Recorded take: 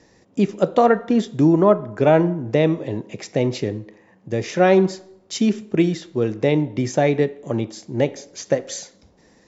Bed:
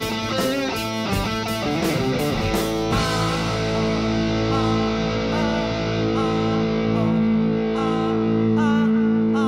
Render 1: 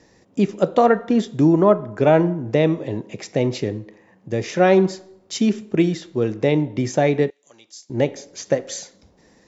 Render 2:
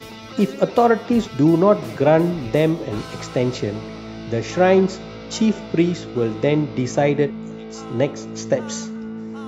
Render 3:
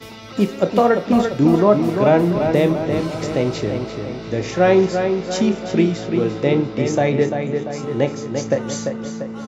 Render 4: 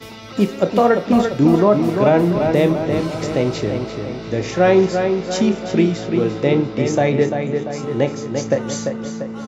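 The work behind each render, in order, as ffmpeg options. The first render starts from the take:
-filter_complex "[0:a]asettb=1/sr,asplit=3[a][b][c];[a]atrim=end=7.304[d];[b]atrim=start=7.3:end=7.9,asetpts=PTS-STARTPTS,afade=t=in:d=0.004:c=qsin,afade=t=out:st=0.596:d=0.004:c=qsin,bandpass=f=6.2k:t=q:w=1.6[e];[c]atrim=start=7.896[f];[d][e]acrossfade=d=0.004:c1=hsin:c2=qsin[g];[g][f]acrossfade=d=0.004:c1=qsin:c2=hsin"
-filter_complex "[1:a]volume=-12.5dB[a];[0:a][a]amix=inputs=2:normalize=0"
-filter_complex "[0:a]asplit=2[a][b];[b]adelay=29,volume=-11.5dB[c];[a][c]amix=inputs=2:normalize=0,asplit=2[d][e];[e]adelay=344,lowpass=f=4.1k:p=1,volume=-6dB,asplit=2[f][g];[g]adelay=344,lowpass=f=4.1k:p=1,volume=0.54,asplit=2[h][i];[i]adelay=344,lowpass=f=4.1k:p=1,volume=0.54,asplit=2[j][k];[k]adelay=344,lowpass=f=4.1k:p=1,volume=0.54,asplit=2[l][m];[m]adelay=344,lowpass=f=4.1k:p=1,volume=0.54,asplit=2[n][o];[o]adelay=344,lowpass=f=4.1k:p=1,volume=0.54,asplit=2[p][q];[q]adelay=344,lowpass=f=4.1k:p=1,volume=0.54[r];[d][f][h][j][l][n][p][r]amix=inputs=8:normalize=0"
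-af "volume=1dB,alimiter=limit=-3dB:level=0:latency=1"

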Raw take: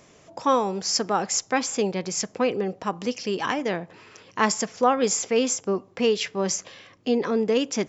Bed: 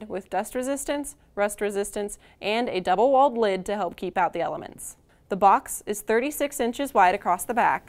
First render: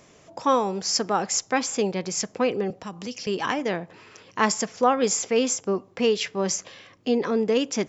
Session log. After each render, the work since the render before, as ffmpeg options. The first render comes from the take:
-filter_complex "[0:a]asettb=1/sr,asplit=3[a][b][c];[a]atrim=end=2.704[d];[b]atrim=start=2.7:end=3.27,asetpts=PTS-STARTPTS,afade=t=in:d=0.004:c=qsin,afade=t=out:st=0.566:d=0.004:c=qsin,acrossover=split=190|3000[e][f][g];[f]acompressor=threshold=-38dB:ratio=2.5:attack=3.2:release=140:knee=2.83:detection=peak[h];[e][h][g]amix=inputs=3:normalize=0[i];[c]atrim=start=3.266[j];[d][i]acrossfade=d=0.004:c1=hsin:c2=qsin[k];[k][j]acrossfade=d=0.004:c1=qsin:c2=hsin"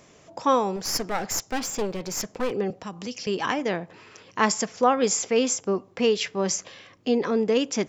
-filter_complex "[0:a]asettb=1/sr,asplit=3[a][b][c];[a]atrim=end=0.764[d];[b]atrim=start=0.76:end=2.51,asetpts=PTS-STARTPTS,afade=t=in:d=0.004:c=qsin,afade=t=out:st=1.746:d=0.004:c=qsin,aeval=exprs='clip(val(0),-1,0.0251)':c=same[e];[c]atrim=start=2.506[f];[d][e]acrossfade=d=0.004:c1=hsin:c2=qsin[g];[g][f]acrossfade=d=0.004:c1=qsin:c2=hsin"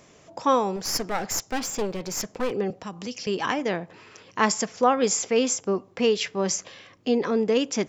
-af anull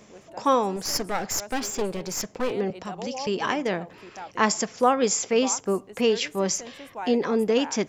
-filter_complex "[1:a]volume=-16.5dB[a];[0:a][a]amix=inputs=2:normalize=0"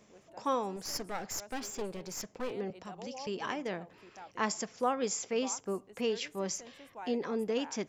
-af "volume=-10.5dB"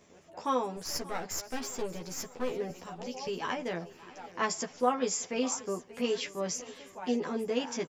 -filter_complex "[0:a]asplit=2[a][b];[b]adelay=12,volume=-2dB[c];[a][c]amix=inputs=2:normalize=0,aecho=1:1:583|1166|1749|2332|2915:0.112|0.0628|0.0352|0.0197|0.011"

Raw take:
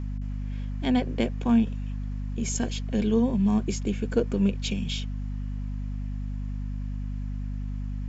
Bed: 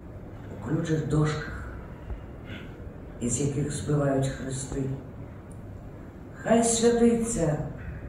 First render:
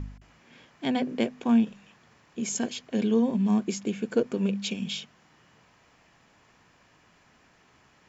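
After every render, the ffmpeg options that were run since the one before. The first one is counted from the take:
-af "bandreject=f=50:t=h:w=4,bandreject=f=100:t=h:w=4,bandreject=f=150:t=h:w=4,bandreject=f=200:t=h:w=4,bandreject=f=250:t=h:w=4"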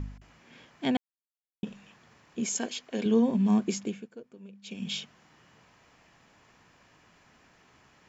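-filter_complex "[0:a]asettb=1/sr,asplit=3[a][b][c];[a]atrim=end=2.464[d];[b]atrim=start=2.46:end=3.06,asetpts=PTS-STARTPTS,afade=t=in:d=0.004:c=qsin,afade=t=out:st=0.596:d=0.004:c=qsin,equalizer=f=110:w=0.67:g=-13[e];[c]atrim=start=3.056[f];[d][e]acrossfade=d=0.004:c1=hsin:c2=qsin[g];[g][f]acrossfade=d=0.004:c1=qsin:c2=hsin,asplit=5[h][i][j][k][l];[h]atrim=end=0.97,asetpts=PTS-STARTPTS,afade=t=out:st=0.966:d=0.004:c=hsin[m];[i]atrim=start=0.97:end=1.63,asetpts=PTS-STARTPTS,volume=0[n];[j]atrim=start=1.63:end=4.09,asetpts=PTS-STARTPTS,afade=t=in:d=0.004:c=hsin,afade=t=out:st=2.13:d=0.33:silence=0.0841395[o];[k]atrim=start=4.09:end=4.62,asetpts=PTS-STARTPTS,volume=-21.5dB[p];[l]atrim=start=4.62,asetpts=PTS-STARTPTS,afade=t=in:d=0.33:silence=0.0841395[q];[m][n][o][p][q]concat=n=5:v=0:a=1"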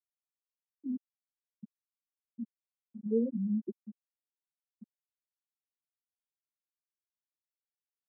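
-af "afftfilt=real='re*gte(hypot(re,im),0.316)':imag='im*gte(hypot(re,im),0.316)':win_size=1024:overlap=0.75,highpass=f=460:p=1"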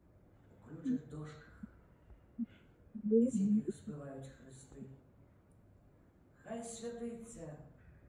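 -filter_complex "[1:a]volume=-23dB[a];[0:a][a]amix=inputs=2:normalize=0"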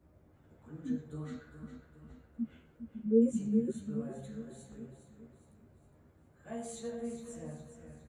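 -filter_complex "[0:a]asplit=2[a][b];[b]adelay=13,volume=-3.5dB[c];[a][c]amix=inputs=2:normalize=0,aecho=1:1:411|822|1233|1644|2055:0.316|0.145|0.0669|0.0308|0.0142"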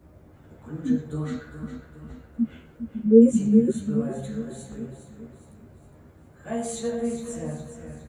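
-af "volume=12dB"

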